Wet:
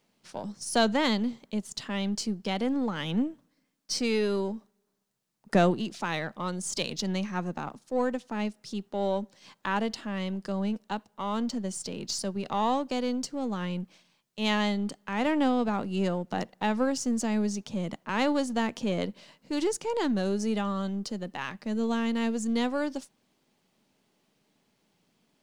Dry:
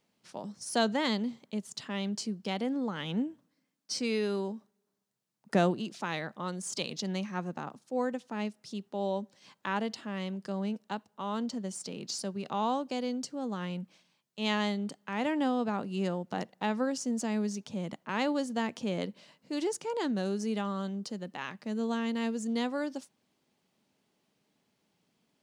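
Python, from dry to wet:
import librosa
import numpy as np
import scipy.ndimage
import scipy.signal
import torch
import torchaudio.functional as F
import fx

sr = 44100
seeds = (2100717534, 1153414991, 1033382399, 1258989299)

y = np.where(x < 0.0, 10.0 ** (-3.0 / 20.0) * x, x)
y = y * 10.0 ** (5.5 / 20.0)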